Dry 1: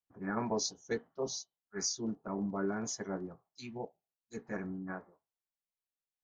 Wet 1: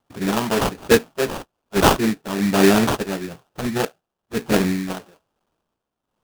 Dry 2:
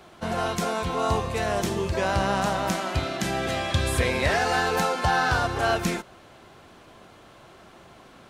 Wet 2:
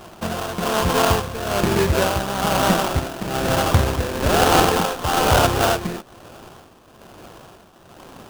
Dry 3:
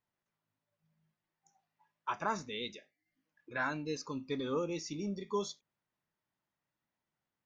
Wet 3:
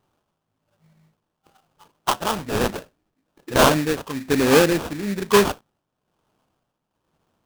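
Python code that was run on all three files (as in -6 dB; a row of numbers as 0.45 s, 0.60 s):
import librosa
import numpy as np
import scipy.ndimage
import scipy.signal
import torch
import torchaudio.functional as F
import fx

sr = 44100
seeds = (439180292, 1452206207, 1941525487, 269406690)

y = x * (1.0 - 0.69 / 2.0 + 0.69 / 2.0 * np.cos(2.0 * np.pi * 1.1 * (np.arange(len(x)) / sr)))
y = fx.sample_hold(y, sr, seeds[0], rate_hz=2100.0, jitter_pct=20)
y = y * 10.0 ** (-3 / 20.0) / np.max(np.abs(y))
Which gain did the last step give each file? +21.0 dB, +9.0 dB, +20.0 dB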